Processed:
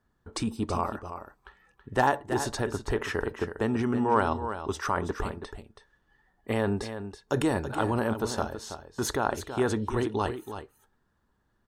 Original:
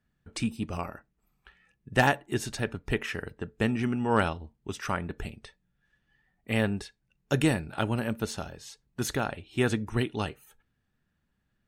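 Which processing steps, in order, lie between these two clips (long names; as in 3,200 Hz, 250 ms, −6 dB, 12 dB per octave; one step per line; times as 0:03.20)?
graphic EQ with 15 bands 160 Hz −7 dB, 400 Hz +5 dB, 1,000 Hz +9 dB, 2,500 Hz −9 dB
in parallel at −1.5 dB: compressor whose output falls as the input rises −30 dBFS, ratio −0.5
on the sum: high-shelf EQ 9,400 Hz −6 dB
single-tap delay 327 ms −10 dB
level −3.5 dB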